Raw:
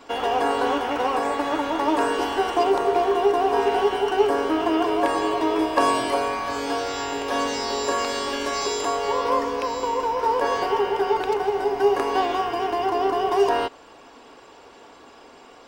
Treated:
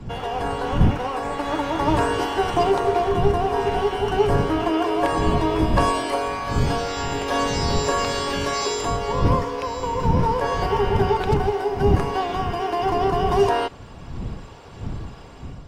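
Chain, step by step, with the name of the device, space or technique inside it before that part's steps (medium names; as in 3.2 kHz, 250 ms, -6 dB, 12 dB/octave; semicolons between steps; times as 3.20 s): smartphone video outdoors (wind noise 140 Hz -25 dBFS; level rider gain up to 7 dB; trim -4.5 dB; AAC 64 kbps 32 kHz)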